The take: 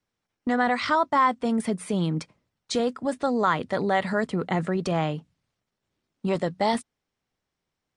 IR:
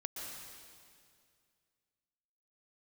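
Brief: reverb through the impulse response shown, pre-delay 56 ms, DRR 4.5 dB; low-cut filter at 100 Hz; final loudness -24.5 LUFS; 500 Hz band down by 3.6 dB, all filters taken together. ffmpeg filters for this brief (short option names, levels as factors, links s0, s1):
-filter_complex "[0:a]highpass=100,equalizer=f=500:t=o:g=-4.5,asplit=2[s0][s1];[1:a]atrim=start_sample=2205,adelay=56[s2];[s1][s2]afir=irnorm=-1:irlink=0,volume=0.631[s3];[s0][s3]amix=inputs=2:normalize=0,volume=1.19"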